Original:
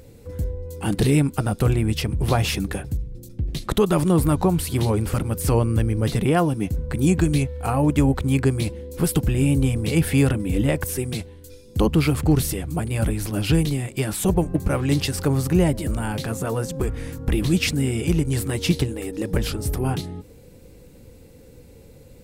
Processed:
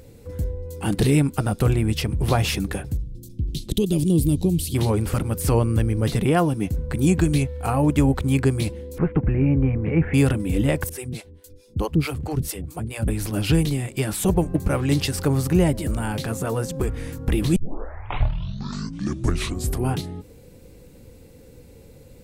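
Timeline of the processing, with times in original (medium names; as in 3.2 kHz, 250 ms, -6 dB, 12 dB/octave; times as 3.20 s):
2.98–4.75 s: FFT filter 330 Hz 0 dB, 1.3 kHz -30 dB, 3.1 kHz 0 dB
8.98–10.14 s: steep low-pass 2.3 kHz 48 dB/octave
10.89–13.08 s: harmonic tremolo 4.6 Hz, depth 100%, crossover 430 Hz
17.56 s: tape start 2.34 s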